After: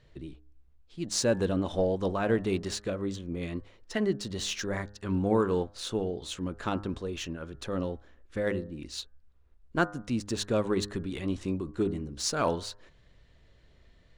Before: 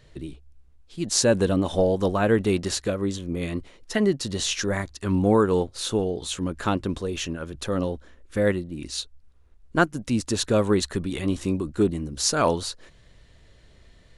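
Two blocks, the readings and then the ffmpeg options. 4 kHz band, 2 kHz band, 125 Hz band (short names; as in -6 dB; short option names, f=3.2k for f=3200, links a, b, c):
-7.0 dB, -6.5 dB, -6.5 dB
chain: -af "bandreject=f=102.2:t=h:w=4,bandreject=f=204.4:t=h:w=4,bandreject=f=306.6:t=h:w=4,bandreject=f=408.8:t=h:w=4,bandreject=f=511:t=h:w=4,bandreject=f=613.2:t=h:w=4,bandreject=f=715.4:t=h:w=4,bandreject=f=817.6:t=h:w=4,bandreject=f=919.8:t=h:w=4,bandreject=f=1.022k:t=h:w=4,bandreject=f=1.1242k:t=h:w=4,bandreject=f=1.2264k:t=h:w=4,bandreject=f=1.3286k:t=h:w=4,bandreject=f=1.4308k:t=h:w=4,bandreject=f=1.533k:t=h:w=4,bandreject=f=1.6352k:t=h:w=4,bandreject=f=1.7374k:t=h:w=4,bandreject=f=1.8396k:t=h:w=4,adynamicsmooth=sensitivity=3.5:basefreq=6.4k,volume=-6dB"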